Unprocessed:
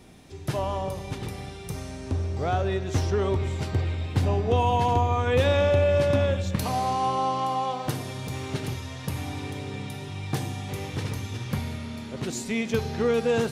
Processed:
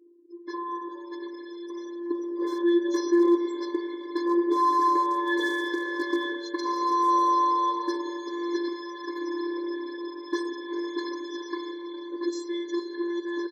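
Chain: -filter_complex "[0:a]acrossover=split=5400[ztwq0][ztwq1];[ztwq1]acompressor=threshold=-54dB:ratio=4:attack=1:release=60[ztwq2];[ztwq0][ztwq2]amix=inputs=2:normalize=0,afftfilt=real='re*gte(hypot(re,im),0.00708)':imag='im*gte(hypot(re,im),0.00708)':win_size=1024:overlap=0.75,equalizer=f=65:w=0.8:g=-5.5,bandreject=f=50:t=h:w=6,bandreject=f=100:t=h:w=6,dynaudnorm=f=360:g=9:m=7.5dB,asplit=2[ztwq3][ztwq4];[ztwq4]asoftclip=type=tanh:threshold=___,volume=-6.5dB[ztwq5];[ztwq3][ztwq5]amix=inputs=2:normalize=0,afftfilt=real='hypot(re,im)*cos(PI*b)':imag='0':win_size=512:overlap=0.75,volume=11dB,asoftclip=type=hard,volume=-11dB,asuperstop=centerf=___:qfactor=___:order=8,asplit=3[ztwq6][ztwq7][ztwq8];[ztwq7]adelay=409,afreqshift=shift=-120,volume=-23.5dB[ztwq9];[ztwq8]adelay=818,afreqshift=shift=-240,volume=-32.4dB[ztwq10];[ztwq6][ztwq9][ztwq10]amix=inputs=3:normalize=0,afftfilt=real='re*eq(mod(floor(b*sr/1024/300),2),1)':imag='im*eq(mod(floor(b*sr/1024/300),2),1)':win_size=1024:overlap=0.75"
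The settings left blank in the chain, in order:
-18.5dB, 2700, 2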